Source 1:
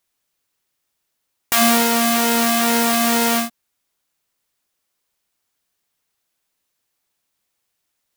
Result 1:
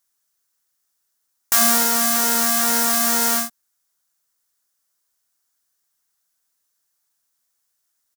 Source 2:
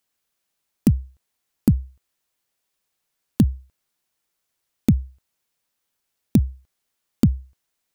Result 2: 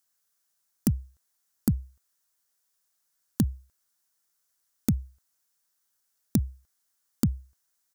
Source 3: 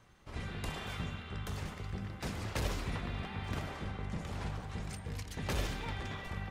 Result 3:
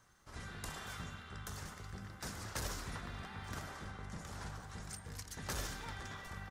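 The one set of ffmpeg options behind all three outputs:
-af "firequalizer=gain_entry='entry(460,0);entry(1500,8);entry(2400,-1);entry(5700,11)':delay=0.05:min_phase=1,volume=-8dB"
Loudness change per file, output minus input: 0.0, −8.0, −5.5 LU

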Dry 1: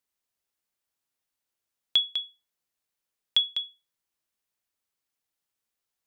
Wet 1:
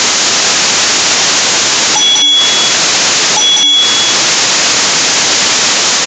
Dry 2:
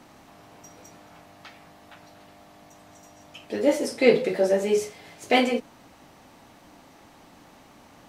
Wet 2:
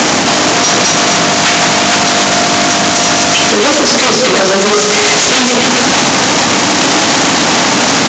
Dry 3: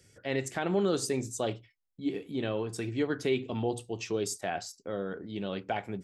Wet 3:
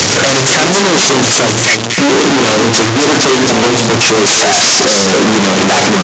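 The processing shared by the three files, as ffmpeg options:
-filter_complex "[0:a]aeval=exprs='val(0)+0.5*0.119*sgn(val(0))':channel_layout=same,highshelf=frequency=5800:gain=7,acrossover=split=260|3000[link_01][link_02][link_03];[link_02]acompressor=threshold=-25dB:ratio=6[link_04];[link_01][link_04][link_03]amix=inputs=3:normalize=0,aecho=1:1:264:0.473,aresample=16000,aeval=exprs='0.422*sin(PI/2*5.62*val(0)/0.422)':channel_layout=same,aresample=44100,highpass=160,alimiter=limit=-7.5dB:level=0:latency=1,volume=5.5dB" -ar 16000 -c:a pcm_mulaw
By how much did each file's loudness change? +20.0, +15.0, +24.0 LU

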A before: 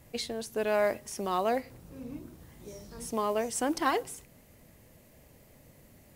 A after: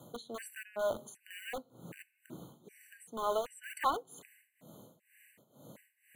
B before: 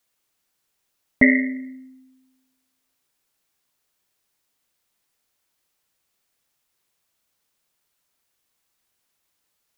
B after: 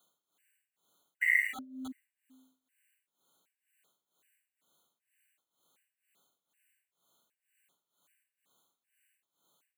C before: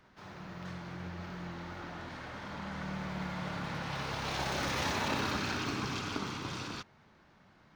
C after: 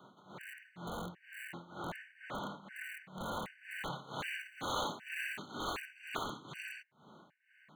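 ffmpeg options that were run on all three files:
-filter_complex "[0:a]highpass=frequency=140:width=0.5412,highpass=frequency=140:width=1.3066,highshelf=frequency=7300:gain=-4,asplit=2[link_01][link_02];[link_02]acompressor=threshold=-42dB:ratio=20,volume=2dB[link_03];[link_01][link_03]amix=inputs=2:normalize=0,tremolo=f=2.1:d=0.89,acrossover=split=460|3300[link_04][link_05][link_06];[link_04]aeval=exprs='(mod(75*val(0)+1,2)-1)/75':channel_layout=same[link_07];[link_07][link_05][link_06]amix=inputs=3:normalize=0,asuperstop=centerf=5200:order=12:qfactor=3,afftfilt=real='re*gt(sin(2*PI*1.3*pts/sr)*(1-2*mod(floor(b*sr/1024/1500),2)),0)':imag='im*gt(sin(2*PI*1.3*pts/sr)*(1-2*mod(floor(b*sr/1024/1500),2)),0)':win_size=1024:overlap=0.75"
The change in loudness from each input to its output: −6.5, −10.0, −5.5 LU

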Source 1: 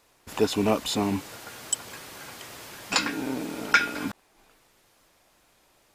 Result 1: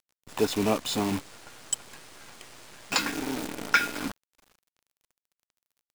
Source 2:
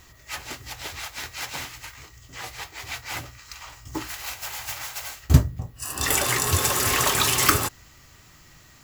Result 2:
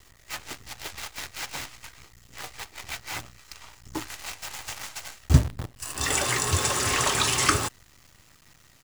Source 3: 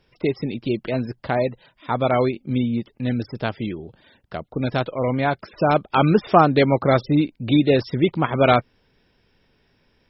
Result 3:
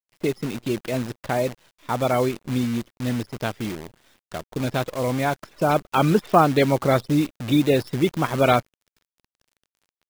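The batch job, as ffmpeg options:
-af "aresample=22050,aresample=44100,acrusher=bits=6:dc=4:mix=0:aa=0.000001,volume=-2dB"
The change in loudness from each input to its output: −2.0, −2.5, −2.0 LU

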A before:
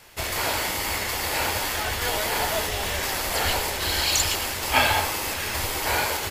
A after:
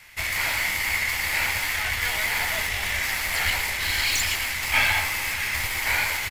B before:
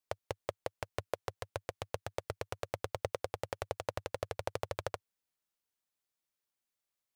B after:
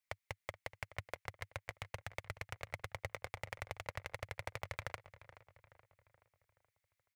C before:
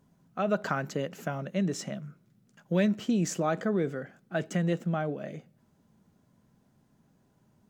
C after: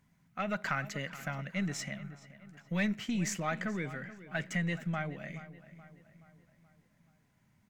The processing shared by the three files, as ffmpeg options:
-filter_complex "[0:a]equalizer=frequency=420:width_type=o:width=1.5:gain=-11.5,aeval=exprs='(tanh(8.91*val(0)+0.45)-tanh(0.45))/8.91':channel_layout=same,equalizer=frequency=2100:width_type=o:width=0.5:gain=12,asplit=2[link_01][link_02];[link_02]adelay=426,lowpass=frequency=3200:poles=1,volume=-15dB,asplit=2[link_03][link_04];[link_04]adelay=426,lowpass=frequency=3200:poles=1,volume=0.51,asplit=2[link_05][link_06];[link_06]adelay=426,lowpass=frequency=3200:poles=1,volume=0.51,asplit=2[link_07][link_08];[link_08]adelay=426,lowpass=frequency=3200:poles=1,volume=0.51,asplit=2[link_09][link_10];[link_10]adelay=426,lowpass=frequency=3200:poles=1,volume=0.51[link_11];[link_01][link_03][link_05][link_07][link_09][link_11]amix=inputs=6:normalize=0"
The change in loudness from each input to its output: +0.5, −5.0, −5.0 LU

